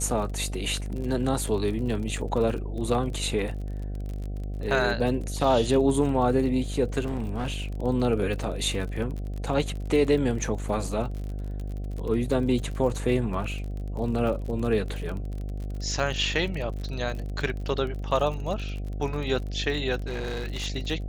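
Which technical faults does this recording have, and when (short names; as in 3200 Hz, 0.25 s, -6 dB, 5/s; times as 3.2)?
buzz 50 Hz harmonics 15 -32 dBFS
crackle 41/s -33 dBFS
6.99–7.73 clipped -24 dBFS
20.06–20.67 clipped -27 dBFS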